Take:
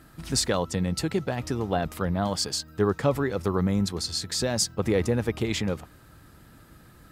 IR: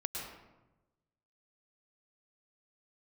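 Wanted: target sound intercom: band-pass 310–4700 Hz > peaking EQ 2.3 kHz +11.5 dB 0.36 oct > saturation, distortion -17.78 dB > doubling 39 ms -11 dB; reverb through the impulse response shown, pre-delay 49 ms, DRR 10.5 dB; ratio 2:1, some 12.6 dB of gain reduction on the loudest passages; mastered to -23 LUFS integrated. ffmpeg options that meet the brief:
-filter_complex "[0:a]acompressor=threshold=0.00708:ratio=2,asplit=2[s0][s1];[1:a]atrim=start_sample=2205,adelay=49[s2];[s1][s2]afir=irnorm=-1:irlink=0,volume=0.237[s3];[s0][s3]amix=inputs=2:normalize=0,highpass=310,lowpass=4700,equalizer=f=2300:t=o:w=0.36:g=11.5,asoftclip=threshold=0.0335,asplit=2[s4][s5];[s5]adelay=39,volume=0.282[s6];[s4][s6]amix=inputs=2:normalize=0,volume=7.94"

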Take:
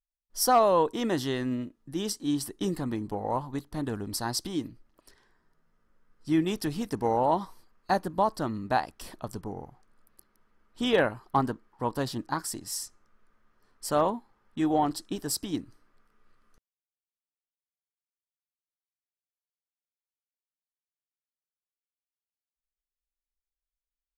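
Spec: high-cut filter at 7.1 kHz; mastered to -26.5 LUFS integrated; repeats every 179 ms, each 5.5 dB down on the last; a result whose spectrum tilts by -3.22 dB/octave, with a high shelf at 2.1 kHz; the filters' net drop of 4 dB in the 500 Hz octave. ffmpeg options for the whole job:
-af "lowpass=7100,equalizer=f=500:t=o:g=-6,highshelf=f=2100:g=9,aecho=1:1:179|358|537|716|895|1074|1253:0.531|0.281|0.149|0.079|0.0419|0.0222|0.0118,volume=1.26"

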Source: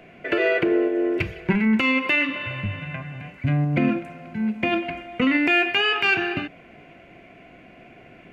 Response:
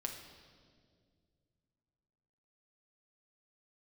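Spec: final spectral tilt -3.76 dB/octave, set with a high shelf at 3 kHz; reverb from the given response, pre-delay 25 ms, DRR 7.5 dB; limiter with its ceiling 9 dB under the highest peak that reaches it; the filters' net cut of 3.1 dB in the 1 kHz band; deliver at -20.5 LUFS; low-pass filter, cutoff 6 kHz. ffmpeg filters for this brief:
-filter_complex "[0:a]lowpass=6000,equalizer=f=1000:t=o:g=-6,highshelf=f=3000:g=7.5,alimiter=limit=0.158:level=0:latency=1,asplit=2[s0][s1];[1:a]atrim=start_sample=2205,adelay=25[s2];[s1][s2]afir=irnorm=-1:irlink=0,volume=0.447[s3];[s0][s3]amix=inputs=2:normalize=0,volume=1.68"

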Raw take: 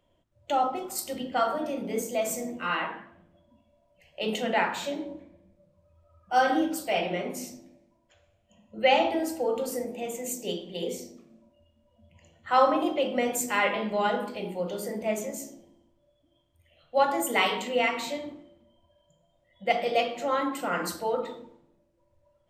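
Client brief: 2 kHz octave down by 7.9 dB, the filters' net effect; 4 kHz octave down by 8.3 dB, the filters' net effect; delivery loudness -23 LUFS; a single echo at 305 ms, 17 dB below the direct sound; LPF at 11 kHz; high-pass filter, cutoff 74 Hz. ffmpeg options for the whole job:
-af "highpass=74,lowpass=11000,equalizer=f=2000:t=o:g=-8,equalizer=f=4000:t=o:g=-8,aecho=1:1:305:0.141,volume=2.24"

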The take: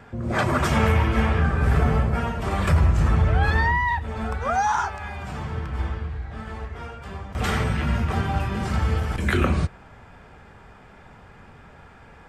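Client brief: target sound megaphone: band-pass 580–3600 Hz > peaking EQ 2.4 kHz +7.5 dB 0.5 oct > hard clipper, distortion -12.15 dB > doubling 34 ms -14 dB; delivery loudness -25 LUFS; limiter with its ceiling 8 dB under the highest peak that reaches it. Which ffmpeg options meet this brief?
-filter_complex "[0:a]alimiter=limit=0.15:level=0:latency=1,highpass=580,lowpass=3600,equalizer=f=2400:t=o:w=0.5:g=7.5,asoftclip=type=hard:threshold=0.0562,asplit=2[s0][s1];[s1]adelay=34,volume=0.2[s2];[s0][s2]amix=inputs=2:normalize=0,volume=2.11"

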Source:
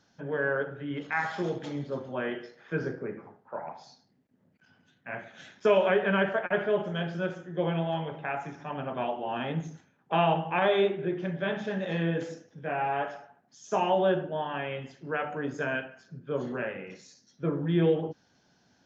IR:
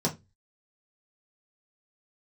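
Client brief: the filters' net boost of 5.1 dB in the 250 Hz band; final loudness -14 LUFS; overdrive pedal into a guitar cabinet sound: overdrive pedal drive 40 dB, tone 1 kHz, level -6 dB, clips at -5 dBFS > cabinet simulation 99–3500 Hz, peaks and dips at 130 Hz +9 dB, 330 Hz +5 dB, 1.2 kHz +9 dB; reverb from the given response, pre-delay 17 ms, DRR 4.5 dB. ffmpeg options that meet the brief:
-filter_complex "[0:a]equalizer=f=250:t=o:g=4,asplit=2[s0][s1];[1:a]atrim=start_sample=2205,adelay=17[s2];[s1][s2]afir=irnorm=-1:irlink=0,volume=0.224[s3];[s0][s3]amix=inputs=2:normalize=0,asplit=2[s4][s5];[s5]highpass=f=720:p=1,volume=100,asoftclip=type=tanh:threshold=0.562[s6];[s4][s6]amix=inputs=2:normalize=0,lowpass=f=1000:p=1,volume=0.501,highpass=99,equalizer=f=130:t=q:w=4:g=9,equalizer=f=330:t=q:w=4:g=5,equalizer=f=1200:t=q:w=4:g=9,lowpass=f=3500:w=0.5412,lowpass=f=3500:w=1.3066,volume=0.841"

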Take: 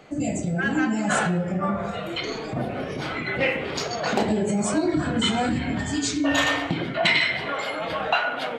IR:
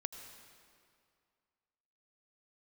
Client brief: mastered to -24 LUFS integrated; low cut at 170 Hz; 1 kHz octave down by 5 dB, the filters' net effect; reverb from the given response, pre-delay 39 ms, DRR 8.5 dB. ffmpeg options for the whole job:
-filter_complex "[0:a]highpass=170,equalizer=f=1000:t=o:g=-7.5,asplit=2[s0][s1];[1:a]atrim=start_sample=2205,adelay=39[s2];[s1][s2]afir=irnorm=-1:irlink=0,volume=0.447[s3];[s0][s3]amix=inputs=2:normalize=0,volume=1.19"

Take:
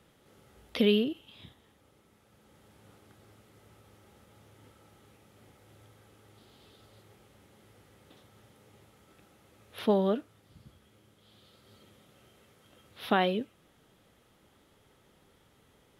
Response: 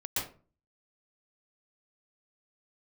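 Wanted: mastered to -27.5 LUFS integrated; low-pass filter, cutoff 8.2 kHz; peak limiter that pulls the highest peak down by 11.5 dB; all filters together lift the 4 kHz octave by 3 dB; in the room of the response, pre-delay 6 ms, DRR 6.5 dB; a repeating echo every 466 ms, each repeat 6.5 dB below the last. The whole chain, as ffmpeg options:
-filter_complex "[0:a]lowpass=8200,equalizer=f=4000:t=o:g=4.5,alimiter=limit=0.0841:level=0:latency=1,aecho=1:1:466|932|1398|1864|2330|2796:0.473|0.222|0.105|0.0491|0.0231|0.0109,asplit=2[s0][s1];[1:a]atrim=start_sample=2205,adelay=6[s2];[s1][s2]afir=irnorm=-1:irlink=0,volume=0.266[s3];[s0][s3]amix=inputs=2:normalize=0,volume=2.82"

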